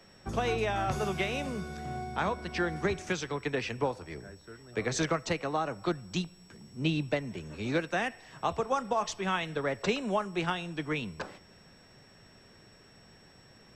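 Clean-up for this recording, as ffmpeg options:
-af "bandreject=f=5.5k:w=30"

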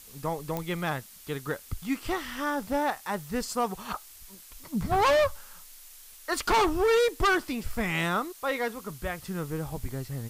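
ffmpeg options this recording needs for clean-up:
-af "adeclick=t=4,afftdn=nr=22:nf=-49"

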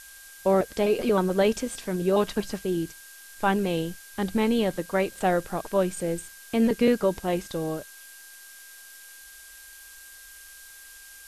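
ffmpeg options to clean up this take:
-af "bandreject=f=1.6k:w=30,afftdn=nr=23:nf=-47"

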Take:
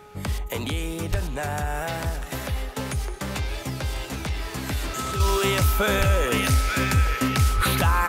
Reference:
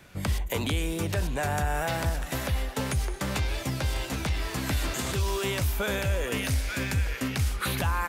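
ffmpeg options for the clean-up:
-filter_complex "[0:a]bandreject=f=418.4:t=h:w=4,bandreject=f=836.8:t=h:w=4,bandreject=f=1.2552k:t=h:w=4,bandreject=f=1.3k:w=30,asplit=3[a][b][c];[a]afade=t=out:st=1.1:d=0.02[d];[b]highpass=f=140:w=0.5412,highpass=f=140:w=1.3066,afade=t=in:st=1.1:d=0.02,afade=t=out:st=1.22:d=0.02[e];[c]afade=t=in:st=1.22:d=0.02[f];[d][e][f]amix=inputs=3:normalize=0,asplit=3[g][h][i];[g]afade=t=out:st=5.98:d=0.02[j];[h]highpass=f=140:w=0.5412,highpass=f=140:w=1.3066,afade=t=in:st=5.98:d=0.02,afade=t=out:st=6.1:d=0.02[k];[i]afade=t=in:st=6.1:d=0.02[l];[j][k][l]amix=inputs=3:normalize=0,asplit=3[m][n][o];[m]afade=t=out:st=7.56:d=0.02[p];[n]highpass=f=140:w=0.5412,highpass=f=140:w=1.3066,afade=t=in:st=7.56:d=0.02,afade=t=out:st=7.68:d=0.02[q];[o]afade=t=in:st=7.68:d=0.02[r];[p][q][r]amix=inputs=3:normalize=0,asetnsamples=n=441:p=0,asendcmd='5.2 volume volume -6.5dB',volume=0dB"

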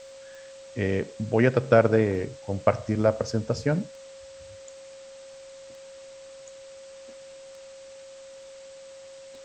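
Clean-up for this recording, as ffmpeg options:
-af "adeclick=t=4,bandreject=f=540:w=30,afwtdn=0.0032"

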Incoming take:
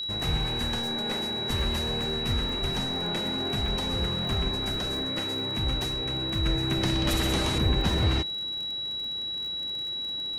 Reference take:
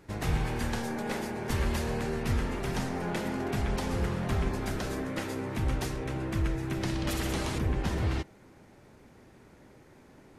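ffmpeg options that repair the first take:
-filter_complex "[0:a]adeclick=t=4,bandreject=f=3.9k:w=30,asplit=3[a][b][c];[a]afade=t=out:st=2.61:d=0.02[d];[b]highpass=f=140:w=0.5412,highpass=f=140:w=1.3066,afade=t=in:st=2.61:d=0.02,afade=t=out:st=2.73:d=0.02[e];[c]afade=t=in:st=2.73:d=0.02[f];[d][e][f]amix=inputs=3:normalize=0,asplit=3[g][h][i];[g]afade=t=out:st=7.1:d=0.02[j];[h]highpass=f=140:w=0.5412,highpass=f=140:w=1.3066,afade=t=in:st=7.1:d=0.02,afade=t=out:st=7.22:d=0.02[k];[i]afade=t=in:st=7.22:d=0.02[l];[j][k][l]amix=inputs=3:normalize=0,asetnsamples=n=441:p=0,asendcmd='6.46 volume volume -4.5dB',volume=0dB"

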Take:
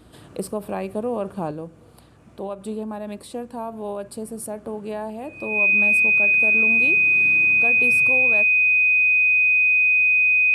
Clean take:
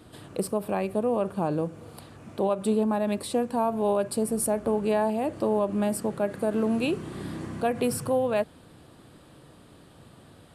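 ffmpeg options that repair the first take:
-af "bandreject=f=60.1:t=h:w=4,bandreject=f=120.2:t=h:w=4,bandreject=f=180.3:t=h:w=4,bandreject=f=240.4:t=h:w=4,bandreject=f=300.5:t=h:w=4,bandreject=f=360.6:t=h:w=4,bandreject=f=2.5k:w=30,asetnsamples=n=441:p=0,asendcmd='1.51 volume volume 5.5dB',volume=0dB"

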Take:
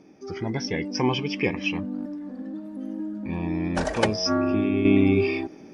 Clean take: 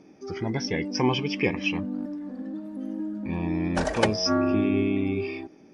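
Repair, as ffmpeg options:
-af "asetnsamples=n=441:p=0,asendcmd='4.85 volume volume -7.5dB',volume=0dB"

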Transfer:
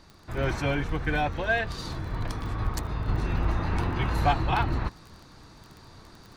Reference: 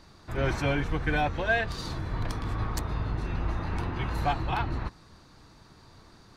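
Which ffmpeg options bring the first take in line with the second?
-filter_complex "[0:a]adeclick=t=4,asplit=3[a][b][c];[a]afade=t=out:st=2.64:d=0.02[d];[b]highpass=f=140:w=0.5412,highpass=f=140:w=1.3066,afade=t=in:st=2.64:d=0.02,afade=t=out:st=2.76:d=0.02[e];[c]afade=t=in:st=2.76:d=0.02[f];[d][e][f]amix=inputs=3:normalize=0,asplit=3[g][h][i];[g]afade=t=out:st=3.07:d=0.02[j];[h]highpass=f=140:w=0.5412,highpass=f=140:w=1.3066,afade=t=in:st=3.07:d=0.02,afade=t=out:st=3.19:d=0.02[k];[i]afade=t=in:st=3.19:d=0.02[l];[j][k][l]amix=inputs=3:normalize=0,asplit=3[m][n][o];[m]afade=t=out:st=4.24:d=0.02[p];[n]highpass=f=140:w=0.5412,highpass=f=140:w=1.3066,afade=t=in:st=4.24:d=0.02,afade=t=out:st=4.36:d=0.02[q];[o]afade=t=in:st=4.36:d=0.02[r];[p][q][r]amix=inputs=3:normalize=0,asetnsamples=n=441:p=0,asendcmd='3.08 volume volume -4dB',volume=0dB"

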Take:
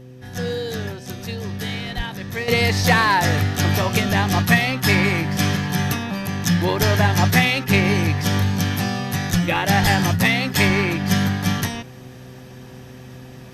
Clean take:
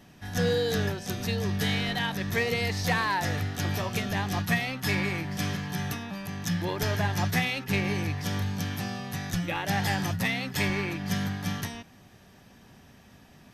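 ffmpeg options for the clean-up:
-filter_complex "[0:a]bandreject=f=127.1:t=h:w=4,bandreject=f=254.2:t=h:w=4,bandreject=f=381.3:t=h:w=4,bandreject=f=508.4:t=h:w=4,asplit=3[a][b][c];[a]afade=t=out:st=1.96:d=0.02[d];[b]highpass=f=140:w=0.5412,highpass=f=140:w=1.3066,afade=t=in:st=1.96:d=0.02,afade=t=out:st=2.08:d=0.02[e];[c]afade=t=in:st=2.08:d=0.02[f];[d][e][f]amix=inputs=3:normalize=0,asplit=3[g][h][i];[g]afade=t=out:st=9.82:d=0.02[j];[h]highpass=f=140:w=0.5412,highpass=f=140:w=1.3066,afade=t=in:st=9.82:d=0.02,afade=t=out:st=9.94:d=0.02[k];[i]afade=t=in:st=9.94:d=0.02[l];[j][k][l]amix=inputs=3:normalize=0,asetnsamples=n=441:p=0,asendcmd='2.48 volume volume -10.5dB',volume=0dB"

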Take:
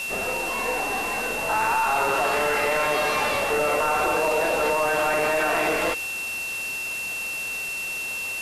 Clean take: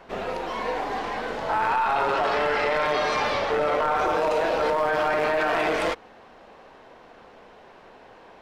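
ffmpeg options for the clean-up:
-af "bandreject=f=2.7k:w=30,afwtdn=0.016"

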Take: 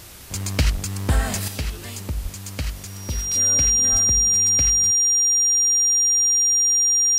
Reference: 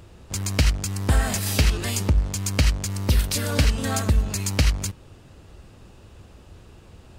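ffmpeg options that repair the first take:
-filter_complex "[0:a]bandreject=f=5.7k:w=30,asplit=3[a][b][c];[a]afade=t=out:st=0.73:d=0.02[d];[b]highpass=f=140:w=0.5412,highpass=f=140:w=1.3066,afade=t=in:st=0.73:d=0.02,afade=t=out:st=0.85:d=0.02[e];[c]afade=t=in:st=0.85:d=0.02[f];[d][e][f]amix=inputs=3:normalize=0,asplit=3[g][h][i];[g]afade=t=out:st=2.22:d=0.02[j];[h]highpass=f=140:w=0.5412,highpass=f=140:w=1.3066,afade=t=in:st=2.22:d=0.02,afade=t=out:st=2.34:d=0.02[k];[i]afade=t=in:st=2.34:d=0.02[l];[j][k][l]amix=inputs=3:normalize=0,asplit=3[m][n][o];[m]afade=t=out:st=3.91:d=0.02[p];[n]highpass=f=140:w=0.5412,highpass=f=140:w=1.3066,afade=t=in:st=3.91:d=0.02,afade=t=out:st=4.03:d=0.02[q];[o]afade=t=in:st=4.03:d=0.02[r];[p][q][r]amix=inputs=3:normalize=0,afwtdn=0.0079,asetnsamples=n=441:p=0,asendcmd='1.48 volume volume 8dB',volume=0dB"

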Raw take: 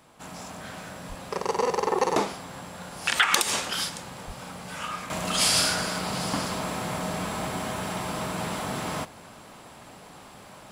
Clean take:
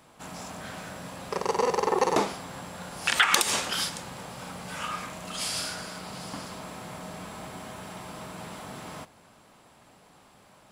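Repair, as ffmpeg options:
-filter_complex "[0:a]asplit=3[a][b][c];[a]afade=t=out:st=1.08:d=0.02[d];[b]highpass=f=140:w=0.5412,highpass=f=140:w=1.3066,afade=t=in:st=1.08:d=0.02,afade=t=out:st=1.2:d=0.02[e];[c]afade=t=in:st=1.2:d=0.02[f];[d][e][f]amix=inputs=3:normalize=0,asplit=3[g][h][i];[g]afade=t=out:st=4.26:d=0.02[j];[h]highpass=f=140:w=0.5412,highpass=f=140:w=1.3066,afade=t=in:st=4.26:d=0.02,afade=t=out:st=4.38:d=0.02[k];[i]afade=t=in:st=4.38:d=0.02[l];[j][k][l]amix=inputs=3:normalize=0,asetnsamples=n=441:p=0,asendcmd='5.1 volume volume -9.5dB',volume=0dB"

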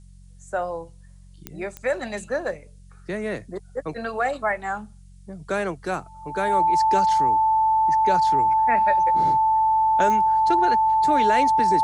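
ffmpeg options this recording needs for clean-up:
-af "adeclick=t=4,bandreject=f=45.7:t=h:w=4,bandreject=f=91.4:t=h:w=4,bandreject=f=137.1:t=h:w=4,bandreject=f=182.8:t=h:w=4,bandreject=f=880:w=30,agate=range=-21dB:threshold=-39dB"

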